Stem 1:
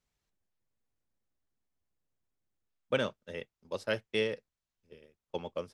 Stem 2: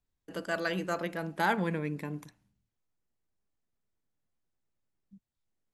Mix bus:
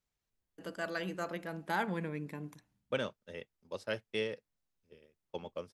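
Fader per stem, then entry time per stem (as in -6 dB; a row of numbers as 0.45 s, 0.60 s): -4.5 dB, -5.5 dB; 0.00 s, 0.30 s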